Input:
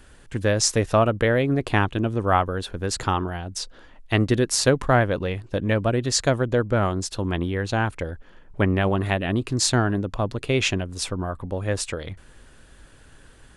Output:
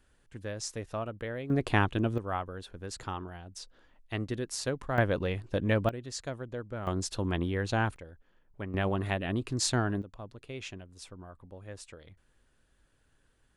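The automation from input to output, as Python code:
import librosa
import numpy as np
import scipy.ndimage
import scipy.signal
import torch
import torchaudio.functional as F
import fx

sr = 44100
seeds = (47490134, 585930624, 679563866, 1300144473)

y = fx.gain(x, sr, db=fx.steps((0.0, -17.0), (1.5, -5.0), (2.18, -14.0), (4.98, -5.0), (5.89, -17.0), (6.87, -5.5), (7.96, -18.0), (8.74, -8.0), (10.02, -19.5)))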